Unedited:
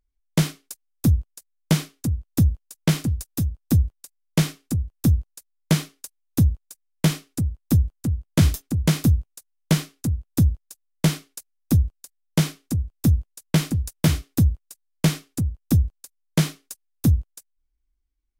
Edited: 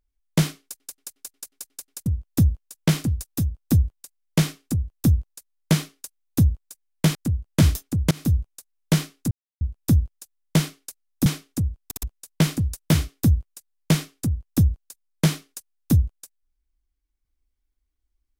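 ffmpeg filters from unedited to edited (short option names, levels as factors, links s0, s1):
-filter_complex "[0:a]asplit=16[s0][s1][s2][s3][s4][s5][s6][s7][s8][s9][s10][s11][s12][s13][s14][s15];[s0]atrim=end=0.802[s16];[s1]atrim=start=0.618:end=0.802[s17];[s2]atrim=start=0.618:end=0.802[s18];[s3]atrim=start=0.618:end=0.802[s19];[s4]atrim=start=0.618:end=0.802[s20];[s5]atrim=start=0.618:end=0.802[s21];[s6]atrim=start=0.618:end=0.802[s22];[s7]atrim=start=0.618:end=0.802[s23];[s8]atrim=start=2.058:end=7.152[s24];[s9]atrim=start=7.938:end=8.9,asetpts=PTS-STARTPTS,afade=t=out:st=0.958:d=0.004:c=hsin:silence=0.0749894[s25];[s10]atrim=start=8.9:end=10.1,asetpts=PTS-STARTPTS,afade=t=in:d=0.28:silence=0.0749894,afade=t=out:st=1.196:d=0.004:c=hsin,apad=pad_dur=0.3[s26];[s11]atrim=start=10.1:end=11.752,asetpts=PTS-STARTPTS,afade=t=in:d=0.004:c=hsin[s27];[s12]atrim=start=12.398:end=13.052[s28];[s13]atrim=start=12.988:end=13.052[s29];[s14]atrim=start=12.988:end=13.052[s30];[s15]atrim=start=13.168[s31];[s16][s17]acrossfade=d=0.004:c1=hsin:c2=hsin[s32];[s32][s18]acrossfade=d=0.004:c1=hsin:c2=hsin[s33];[s33][s19]acrossfade=d=0.004:c1=hsin:c2=hsin[s34];[s34][s20]acrossfade=d=0.004:c1=hsin:c2=hsin[s35];[s35][s21]acrossfade=d=0.004:c1=hsin:c2=hsin[s36];[s36][s22]acrossfade=d=0.004:c1=hsin:c2=hsin[s37];[s37][s23]acrossfade=d=0.004:c1=hsin:c2=hsin[s38];[s38][s24]acrossfade=d=0.004:c1=hsin:c2=hsin[s39];[s25][s26][s27]concat=n=3:v=0:a=1[s40];[s39][s40]acrossfade=d=0.004:c1=hsin:c2=hsin[s41];[s41][s28]acrossfade=d=0.004:c1=hsin:c2=hsin[s42];[s42][s29]acrossfade=d=0.004:c1=hsin:c2=hsin[s43];[s43][s30]acrossfade=d=0.004:c1=hsin:c2=hsin[s44];[s44][s31]acrossfade=d=0.004:c1=hsin:c2=hsin"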